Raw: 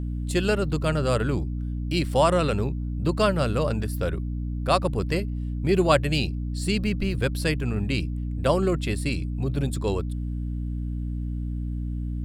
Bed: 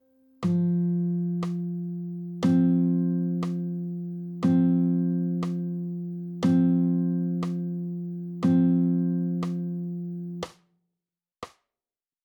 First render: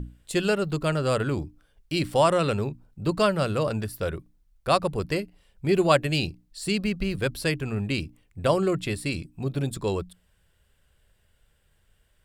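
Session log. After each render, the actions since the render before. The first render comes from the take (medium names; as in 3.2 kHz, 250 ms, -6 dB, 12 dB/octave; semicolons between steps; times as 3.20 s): hum notches 60/120/180/240/300 Hz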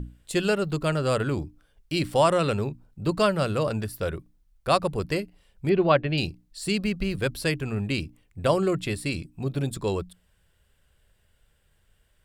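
5.69–6.18 s: Bessel low-pass 2.8 kHz, order 8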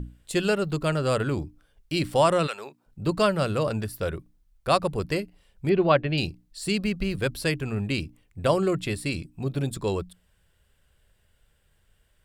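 2.46–2.86 s: high-pass 1.1 kHz -> 370 Hz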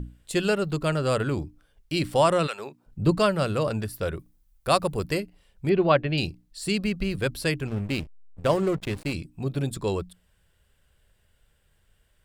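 2.59–3.18 s: bass shelf 380 Hz +7 dB; 4.17–5.18 s: treble shelf 7.1 kHz -> 11 kHz +10.5 dB; 7.67–9.13 s: hysteresis with a dead band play -28.5 dBFS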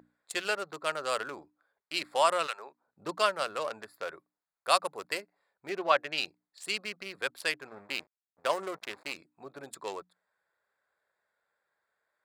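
local Wiener filter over 15 samples; high-pass 840 Hz 12 dB/octave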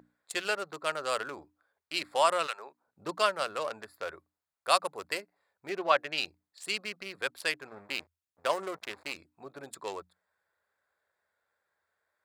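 peaking EQ 84 Hz +13.5 dB 0.27 oct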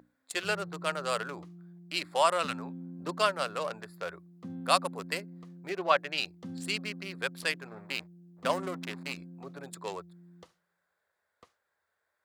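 add bed -20 dB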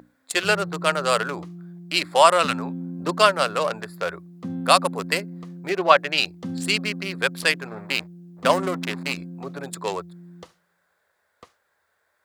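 trim +10.5 dB; peak limiter -1 dBFS, peak gain reduction 2.5 dB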